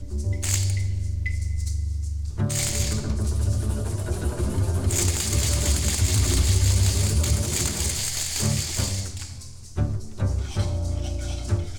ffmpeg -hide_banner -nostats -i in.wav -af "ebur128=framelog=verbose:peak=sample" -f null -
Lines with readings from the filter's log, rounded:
Integrated loudness:
  I:         -24.6 LUFS
  Threshold: -34.7 LUFS
Loudness range:
  LRA:         4.8 LU
  Threshold: -44.2 LUFS
  LRA low:   -26.8 LUFS
  LRA high:  -22.0 LUFS
Sample peak:
  Peak:       -6.8 dBFS